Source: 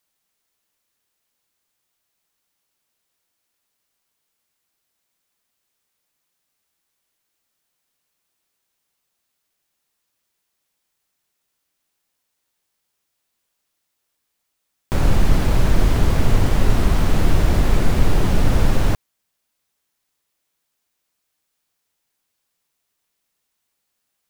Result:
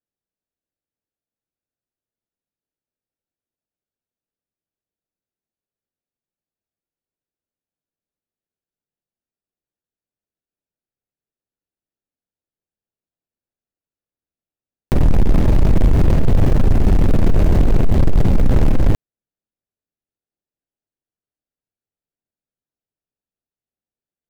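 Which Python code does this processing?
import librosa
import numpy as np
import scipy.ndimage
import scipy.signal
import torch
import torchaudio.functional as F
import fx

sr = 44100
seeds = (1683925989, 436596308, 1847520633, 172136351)

y = scipy.signal.medfilt(x, 41)
y = fx.leveller(y, sr, passes=3)
y = y * 10.0 ** (-3.0 / 20.0)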